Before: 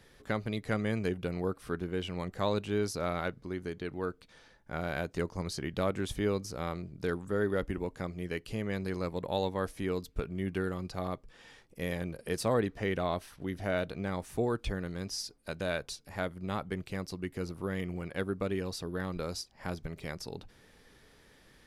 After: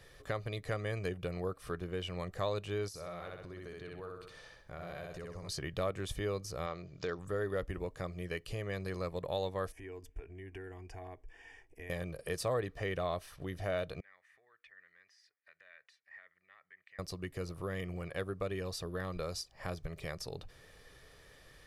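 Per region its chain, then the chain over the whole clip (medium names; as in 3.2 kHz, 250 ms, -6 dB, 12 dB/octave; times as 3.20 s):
2.88–5.49 s: feedback delay 63 ms, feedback 35%, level -3 dB + compression 3:1, threshold -45 dBFS
6.66–7.19 s: bass shelf 120 Hz -11.5 dB + careless resampling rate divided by 3×, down none, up filtered + tape noise reduction on one side only encoder only
9.72–11.90 s: compression 4:1, threshold -39 dBFS + distance through air 51 m + static phaser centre 820 Hz, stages 8
14.00–16.99 s: compression 12:1, threshold -37 dBFS + band-pass filter 1.9 kHz, Q 8.6
whole clip: peaking EQ 220 Hz -14 dB 0.25 oct; comb 1.7 ms, depth 35%; compression 1.5:1, threshold -42 dBFS; trim +1 dB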